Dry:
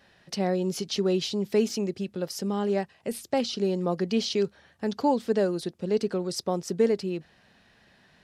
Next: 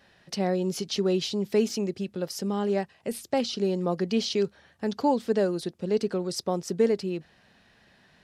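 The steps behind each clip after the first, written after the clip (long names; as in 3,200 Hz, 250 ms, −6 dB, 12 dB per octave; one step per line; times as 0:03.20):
no processing that can be heard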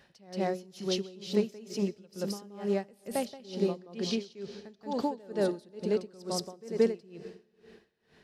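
backwards echo 177 ms −3.5 dB
on a send at −14.5 dB: convolution reverb RT60 2.5 s, pre-delay 40 ms
on the sum: tremolo with a sine in dB 2.2 Hz, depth 24 dB
level −2 dB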